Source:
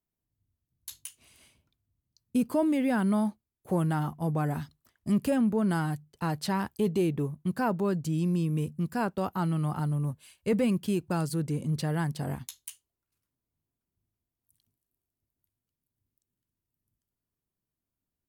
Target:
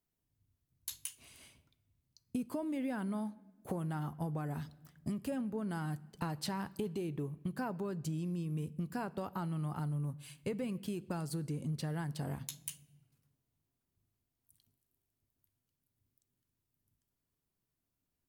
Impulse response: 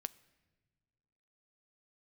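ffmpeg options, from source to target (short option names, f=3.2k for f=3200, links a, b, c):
-filter_complex "[0:a]acompressor=threshold=-36dB:ratio=12[a];[1:a]atrim=start_sample=2205[b];[a][b]afir=irnorm=-1:irlink=0,volume=4dB"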